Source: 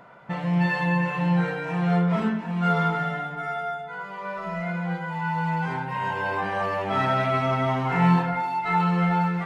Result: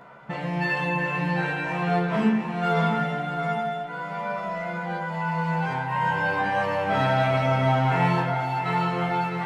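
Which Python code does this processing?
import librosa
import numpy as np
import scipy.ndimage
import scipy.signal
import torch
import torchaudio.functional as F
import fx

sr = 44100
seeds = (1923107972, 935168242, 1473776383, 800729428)

p1 = fx.doubler(x, sr, ms=14.0, db=-3.0)
y = p1 + fx.echo_feedback(p1, sr, ms=658, feedback_pct=40, wet_db=-9.5, dry=0)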